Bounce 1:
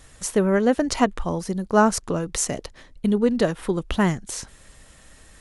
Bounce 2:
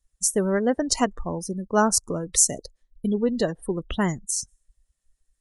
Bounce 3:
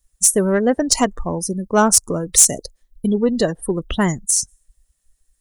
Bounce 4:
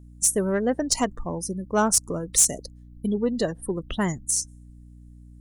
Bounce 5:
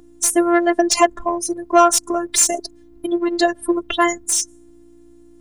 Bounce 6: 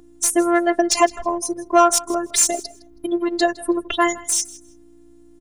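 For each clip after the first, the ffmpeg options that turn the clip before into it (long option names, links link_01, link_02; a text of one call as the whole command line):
ffmpeg -i in.wav -af "bass=frequency=250:gain=-1,treble=frequency=4000:gain=11,afftdn=noise_reduction=34:noise_floor=-29,volume=-3dB" out.wav
ffmpeg -i in.wav -af "highshelf=frequency=9100:gain=10.5,acontrast=84,volume=-1dB" out.wav
ffmpeg -i in.wav -af "aeval=exprs='val(0)+0.0126*(sin(2*PI*60*n/s)+sin(2*PI*2*60*n/s)/2+sin(2*PI*3*60*n/s)/3+sin(2*PI*4*60*n/s)/4+sin(2*PI*5*60*n/s)/5)':channel_layout=same,volume=-7dB" out.wav
ffmpeg -i in.wav -filter_complex "[0:a]afftfilt=real='hypot(re,im)*cos(PI*b)':imag='0':win_size=512:overlap=0.75,asplit=2[link_01][link_02];[link_02]highpass=frequency=720:poles=1,volume=19dB,asoftclip=type=tanh:threshold=-1.5dB[link_03];[link_01][link_03]amix=inputs=2:normalize=0,lowpass=frequency=3500:poles=1,volume=-6dB,volume=5.5dB" out.wav
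ffmpeg -i in.wav -af "aecho=1:1:161|322:0.1|0.017,volume=-1.5dB" out.wav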